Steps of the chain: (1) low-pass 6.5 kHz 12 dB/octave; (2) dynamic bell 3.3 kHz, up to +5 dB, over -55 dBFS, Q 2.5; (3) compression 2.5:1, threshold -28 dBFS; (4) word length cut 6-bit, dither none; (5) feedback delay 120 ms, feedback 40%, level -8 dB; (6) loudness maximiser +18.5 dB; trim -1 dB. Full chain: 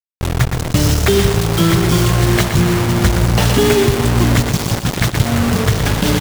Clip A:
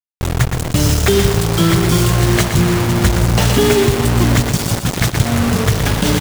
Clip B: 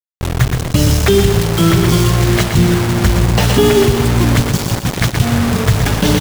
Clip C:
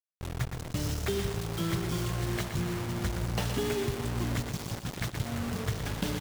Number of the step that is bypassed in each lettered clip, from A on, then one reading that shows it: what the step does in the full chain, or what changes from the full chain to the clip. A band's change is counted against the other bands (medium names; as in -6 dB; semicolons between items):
1, 8 kHz band +1.5 dB; 3, mean gain reduction 1.5 dB; 6, crest factor change +5.0 dB